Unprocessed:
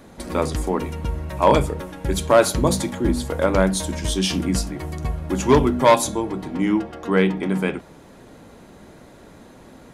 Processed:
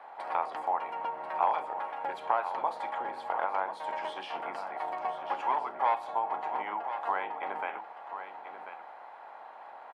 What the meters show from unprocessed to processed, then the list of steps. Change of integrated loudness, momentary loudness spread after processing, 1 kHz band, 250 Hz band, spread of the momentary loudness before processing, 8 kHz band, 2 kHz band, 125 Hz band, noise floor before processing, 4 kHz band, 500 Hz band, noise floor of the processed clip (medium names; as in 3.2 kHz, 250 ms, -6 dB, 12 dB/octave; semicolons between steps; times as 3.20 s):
-12.5 dB, 16 LU, -4.0 dB, -31.0 dB, 12 LU, under -35 dB, -10.5 dB, under -40 dB, -46 dBFS, -20.0 dB, -17.5 dB, -48 dBFS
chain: spectral peaks clipped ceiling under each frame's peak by 13 dB; peaking EQ 8.4 kHz +2.5 dB 0.37 oct; band-stop 3.7 kHz, Q 14; compression 6:1, threshold -24 dBFS, peak gain reduction 15 dB; resonant high-pass 810 Hz, resonance Q 4.4; distance through air 460 m; delay 1039 ms -10 dB; trim -5 dB